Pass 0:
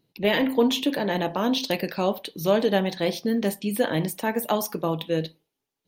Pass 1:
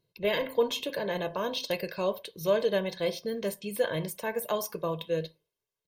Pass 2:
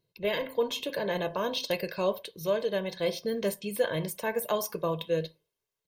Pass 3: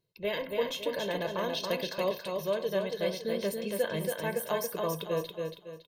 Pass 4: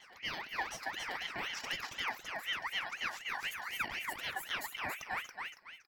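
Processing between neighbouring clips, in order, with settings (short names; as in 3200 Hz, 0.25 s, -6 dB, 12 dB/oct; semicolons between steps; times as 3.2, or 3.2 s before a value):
comb 1.9 ms, depth 74%; gain -7.5 dB
vocal rider 0.5 s
feedback echo 0.279 s, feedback 35%, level -4 dB; gain -3 dB
reverse echo 0.983 s -17 dB; ring modulator with a swept carrier 1900 Hz, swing 35%, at 4 Hz; gain -5 dB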